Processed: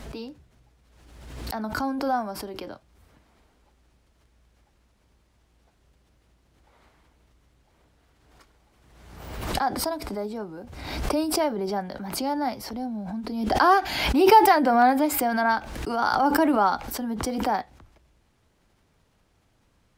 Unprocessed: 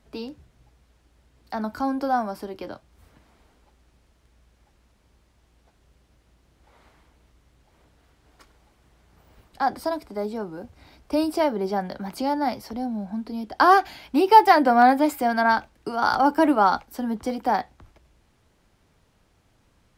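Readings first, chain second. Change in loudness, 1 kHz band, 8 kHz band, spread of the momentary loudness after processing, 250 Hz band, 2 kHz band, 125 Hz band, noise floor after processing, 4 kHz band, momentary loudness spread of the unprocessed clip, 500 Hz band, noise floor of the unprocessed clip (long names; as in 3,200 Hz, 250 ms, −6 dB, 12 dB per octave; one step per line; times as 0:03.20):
−1.5 dB, −2.0 dB, +9.5 dB, 18 LU, −1.0 dB, −1.5 dB, +4.5 dB, −66 dBFS, +3.0 dB, 17 LU, −1.0 dB, −64 dBFS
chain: background raised ahead of every attack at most 44 dB per second
level −3 dB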